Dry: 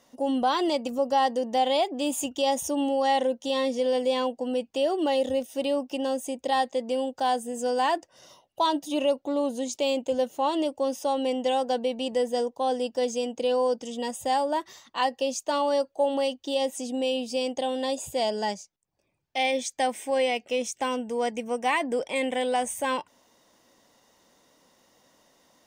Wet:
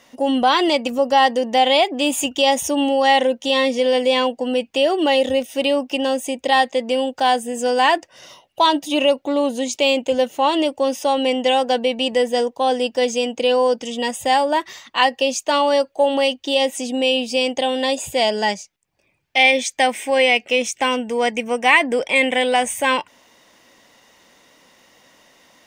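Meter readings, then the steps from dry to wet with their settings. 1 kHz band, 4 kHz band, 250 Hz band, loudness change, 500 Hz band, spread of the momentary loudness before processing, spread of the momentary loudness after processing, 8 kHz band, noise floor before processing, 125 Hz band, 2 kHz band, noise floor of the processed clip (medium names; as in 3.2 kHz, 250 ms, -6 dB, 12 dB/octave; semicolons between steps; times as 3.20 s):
+8.0 dB, +12.5 dB, +7.0 dB, +9.0 dB, +7.5 dB, 5 LU, 6 LU, +8.0 dB, -70 dBFS, no reading, +14.5 dB, -61 dBFS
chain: peaking EQ 2.3 kHz +9 dB 1.2 oct; trim +7 dB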